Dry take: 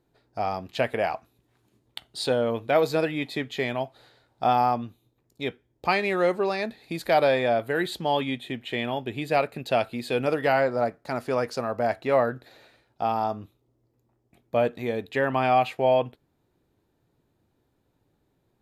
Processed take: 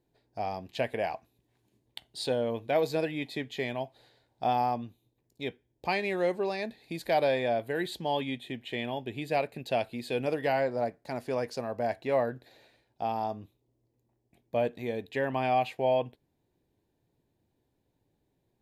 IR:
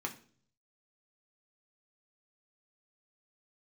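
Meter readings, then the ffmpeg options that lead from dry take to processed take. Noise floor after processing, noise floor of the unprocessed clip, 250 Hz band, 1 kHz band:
-77 dBFS, -72 dBFS, -5.0 dB, -6.0 dB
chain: -af "equalizer=f=1.3k:t=o:w=0.3:g=-12.5,volume=-5dB"

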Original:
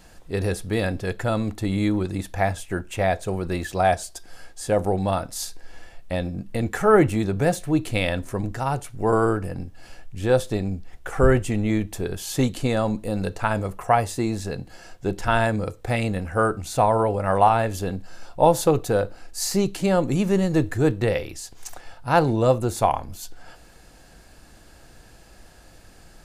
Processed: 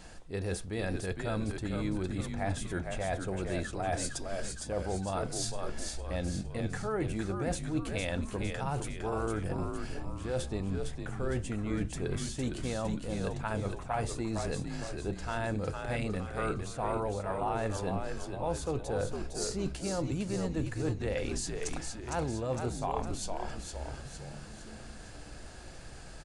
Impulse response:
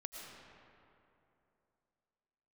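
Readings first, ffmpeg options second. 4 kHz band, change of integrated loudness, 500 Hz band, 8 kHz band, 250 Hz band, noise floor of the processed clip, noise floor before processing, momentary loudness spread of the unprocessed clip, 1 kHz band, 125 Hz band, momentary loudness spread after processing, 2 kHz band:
-7.5 dB, -12.0 dB, -12.5 dB, -6.0 dB, -10.5 dB, -46 dBFS, -49 dBFS, 14 LU, -14.0 dB, -9.5 dB, 7 LU, -11.0 dB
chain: -filter_complex "[0:a]areverse,acompressor=threshold=-32dB:ratio=6,areverse,asplit=7[a][b][c][d][e][f][g];[b]adelay=458,afreqshift=-75,volume=-5dB[h];[c]adelay=916,afreqshift=-150,volume=-11dB[i];[d]adelay=1374,afreqshift=-225,volume=-17dB[j];[e]adelay=1832,afreqshift=-300,volume=-23.1dB[k];[f]adelay=2290,afreqshift=-375,volume=-29.1dB[l];[g]adelay=2748,afreqshift=-450,volume=-35.1dB[m];[a][h][i][j][k][l][m]amix=inputs=7:normalize=0,aresample=22050,aresample=44100"

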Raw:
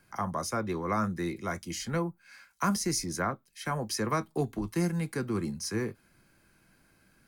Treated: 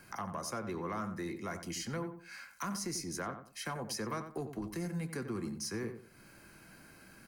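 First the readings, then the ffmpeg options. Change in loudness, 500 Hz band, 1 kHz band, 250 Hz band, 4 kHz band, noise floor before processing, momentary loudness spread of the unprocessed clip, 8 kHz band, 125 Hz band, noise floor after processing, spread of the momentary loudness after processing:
-7.5 dB, -7.0 dB, -8.0 dB, -7.5 dB, -5.0 dB, -66 dBFS, 5 LU, -5.5 dB, -8.5 dB, -58 dBFS, 18 LU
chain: -filter_complex "[0:a]lowshelf=f=82:g=-8,bandreject=f=3.5k:w=10,asplit=2[a][b];[b]alimiter=level_in=0.5dB:limit=-24dB:level=0:latency=1:release=277,volume=-0.5dB,volume=-0.5dB[c];[a][c]amix=inputs=2:normalize=0,acompressor=threshold=-49dB:ratio=2,asoftclip=type=tanh:threshold=-30dB,asplit=2[d][e];[e]adelay=91,lowpass=f=1.9k:p=1,volume=-8.5dB,asplit=2[f][g];[g]adelay=91,lowpass=f=1.9k:p=1,volume=0.28,asplit=2[h][i];[i]adelay=91,lowpass=f=1.9k:p=1,volume=0.28[j];[f][h][j]amix=inputs=3:normalize=0[k];[d][k]amix=inputs=2:normalize=0,volume=2.5dB"

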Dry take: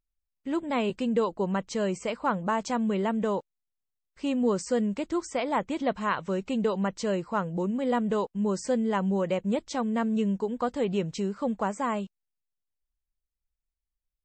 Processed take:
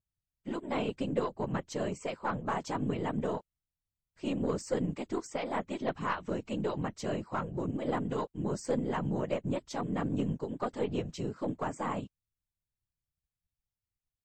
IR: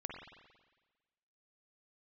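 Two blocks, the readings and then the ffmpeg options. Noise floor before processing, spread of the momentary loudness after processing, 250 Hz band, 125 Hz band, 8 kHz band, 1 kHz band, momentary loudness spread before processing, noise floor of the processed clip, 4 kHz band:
under -85 dBFS, 4 LU, -7.0 dB, -1.5 dB, -6.0 dB, -6.0 dB, 4 LU, under -85 dBFS, -5.5 dB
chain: -af "afftfilt=real='hypot(re,im)*cos(2*PI*random(0))':imag='hypot(re,im)*sin(2*PI*random(1))':win_size=512:overlap=0.75,aeval=exprs='0.126*(cos(1*acos(clip(val(0)/0.126,-1,1)))-cos(1*PI/2))+0.00562*(cos(6*acos(clip(val(0)/0.126,-1,1)))-cos(6*PI/2))':c=same"

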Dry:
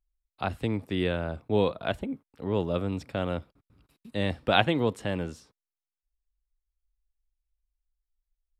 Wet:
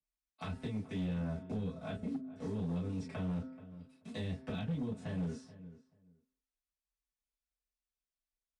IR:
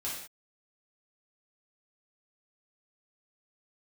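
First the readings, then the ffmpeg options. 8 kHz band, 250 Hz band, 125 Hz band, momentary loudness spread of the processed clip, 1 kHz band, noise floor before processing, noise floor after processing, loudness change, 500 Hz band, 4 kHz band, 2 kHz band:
n/a, -6.5 dB, -5.5 dB, 13 LU, -18.5 dB, under -85 dBFS, under -85 dBFS, -10.0 dB, -16.5 dB, -18.5 dB, -18.0 dB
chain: -filter_complex "[0:a]asplit=2[a][b];[b]acrusher=bits=6:mix=0:aa=0.000001,volume=-5dB[c];[a][c]amix=inputs=2:normalize=0,bandreject=f=130.2:t=h:w=4,bandreject=f=260.4:t=h:w=4,bandreject=f=390.6:t=h:w=4,bandreject=f=520.8:t=h:w=4,bandreject=f=651:t=h:w=4,bandreject=f=781.2:t=h:w=4,bandreject=f=911.4:t=h:w=4,bandreject=f=1.0416k:t=h:w=4,bandreject=f=1.1718k:t=h:w=4,bandreject=f=1.302k:t=h:w=4,bandreject=f=1.4322k:t=h:w=4,bandreject=f=1.5624k:t=h:w=4,bandreject=f=1.6926k:t=h:w=4,bandreject=f=1.8228k:t=h:w=4,bandreject=f=1.953k:t=h:w=4,bandreject=f=2.0832k:t=h:w=4,bandreject=f=2.2134k:t=h:w=4,acrossover=split=210[d][e];[e]acompressor=threshold=-34dB:ratio=20[f];[d][f]amix=inputs=2:normalize=0,highpass=79,acrossover=split=130|3000[g][h][i];[h]acompressor=threshold=-35dB:ratio=5[j];[g][j][i]amix=inputs=3:normalize=0,aresample=22050,aresample=44100,equalizer=f=270:t=o:w=0.25:g=7.5,aecho=1:1:4.6:0.61,asplit=2[k][l];[l]adelay=431,lowpass=f=1.3k:p=1,volume=-16dB,asplit=2[m][n];[n]adelay=431,lowpass=f=1.3k:p=1,volume=0.18[o];[k][m][o]amix=inputs=3:normalize=0[p];[1:a]atrim=start_sample=2205,atrim=end_sample=3969,asetrate=70560,aresample=44100[q];[p][q]afir=irnorm=-1:irlink=0,volume=29.5dB,asoftclip=hard,volume=-29.5dB,adynamicequalizer=threshold=0.00158:dfrequency=1900:dqfactor=0.7:tfrequency=1900:tqfactor=0.7:attack=5:release=100:ratio=0.375:range=2.5:mode=cutabove:tftype=highshelf,volume=-2.5dB"

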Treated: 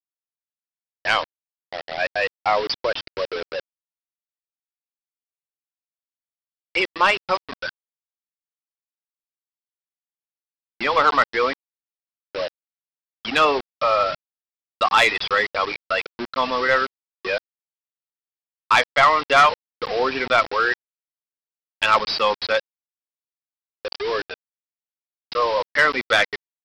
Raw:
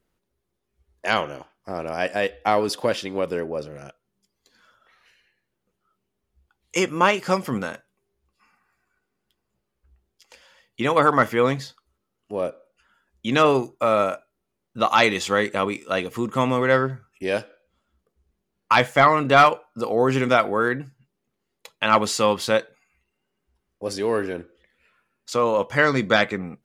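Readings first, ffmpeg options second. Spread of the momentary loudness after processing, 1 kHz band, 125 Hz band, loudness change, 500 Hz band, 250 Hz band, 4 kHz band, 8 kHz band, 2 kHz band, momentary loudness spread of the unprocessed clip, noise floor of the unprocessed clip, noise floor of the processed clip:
16 LU, +1.0 dB, -13.5 dB, +1.0 dB, -2.5 dB, -9.5 dB, +4.0 dB, -5.0 dB, +3.0 dB, 14 LU, -79 dBFS, under -85 dBFS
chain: -af "highpass=f=1.3k:p=1,afftfilt=real='re*gte(hypot(re,im),0.0708)':imag='im*gte(hypot(re,im),0.0708)':win_size=1024:overlap=0.75,aresample=11025,acrusher=bits=5:mix=0:aa=0.000001,aresample=44100,asoftclip=type=tanh:threshold=-15dB,volume=7.5dB"

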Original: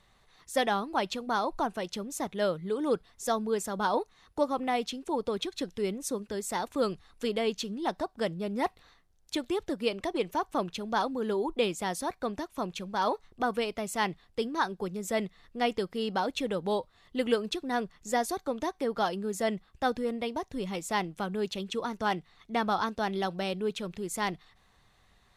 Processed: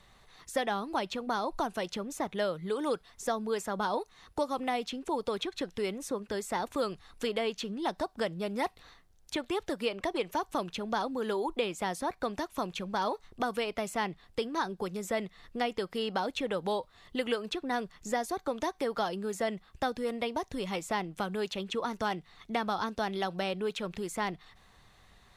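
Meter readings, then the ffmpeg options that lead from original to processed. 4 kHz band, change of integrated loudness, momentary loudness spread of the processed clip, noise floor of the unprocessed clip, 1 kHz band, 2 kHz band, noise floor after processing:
-1.0 dB, -2.0 dB, 4 LU, -65 dBFS, -2.0 dB, -1.5 dB, -62 dBFS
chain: -filter_complex "[0:a]acrossover=split=540|2900[a][b][c];[a]acompressor=threshold=-41dB:ratio=4[d];[b]acompressor=threshold=-36dB:ratio=4[e];[c]acompressor=threshold=-49dB:ratio=4[f];[d][e][f]amix=inputs=3:normalize=0,volume=4.5dB"

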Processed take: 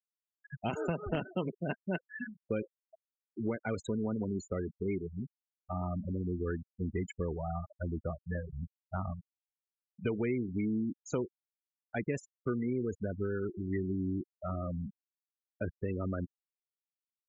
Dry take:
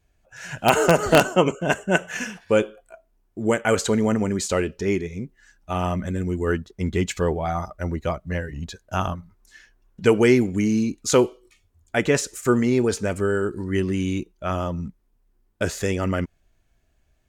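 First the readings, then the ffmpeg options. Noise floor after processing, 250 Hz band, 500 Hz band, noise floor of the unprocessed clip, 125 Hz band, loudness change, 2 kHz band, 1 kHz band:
under -85 dBFS, -12.0 dB, -15.5 dB, -66 dBFS, -10.0 dB, -14.0 dB, -18.0 dB, -17.5 dB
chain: -filter_complex "[0:a]afftfilt=real='re*gte(hypot(re,im),0.126)':imag='im*gte(hypot(re,im),0.126)':win_size=1024:overlap=0.75,acrossover=split=310|3000[a][b][c];[a]acompressor=threshold=-27dB:ratio=4[d];[b]acompressor=threshold=-32dB:ratio=4[e];[c]acompressor=threshold=-47dB:ratio=4[f];[d][e][f]amix=inputs=3:normalize=0,volume=-6.5dB"

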